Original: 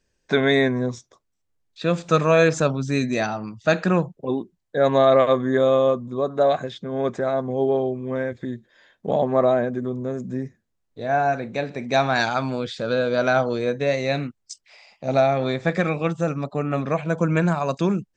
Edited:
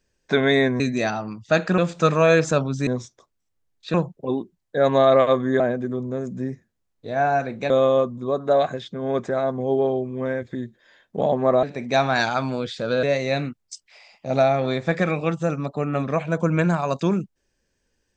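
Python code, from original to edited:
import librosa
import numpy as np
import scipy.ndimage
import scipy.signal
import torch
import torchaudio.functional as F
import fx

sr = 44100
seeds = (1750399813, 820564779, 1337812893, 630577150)

y = fx.edit(x, sr, fx.swap(start_s=0.8, length_s=1.07, other_s=2.96, other_length_s=0.98),
    fx.move(start_s=9.53, length_s=2.1, to_s=5.6),
    fx.cut(start_s=13.03, length_s=0.78), tone=tone)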